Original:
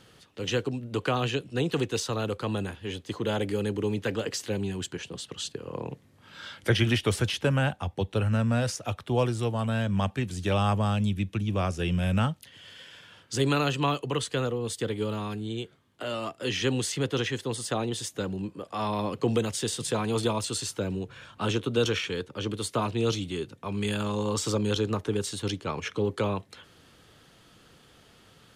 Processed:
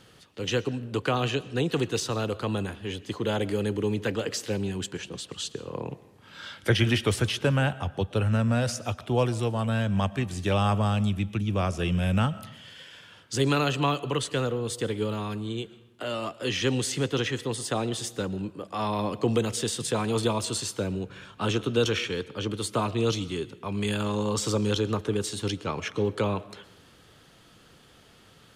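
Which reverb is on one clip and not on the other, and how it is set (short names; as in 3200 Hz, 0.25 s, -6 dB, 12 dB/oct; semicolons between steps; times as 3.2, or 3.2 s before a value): digital reverb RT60 0.87 s, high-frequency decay 0.7×, pre-delay 80 ms, DRR 17.5 dB; gain +1 dB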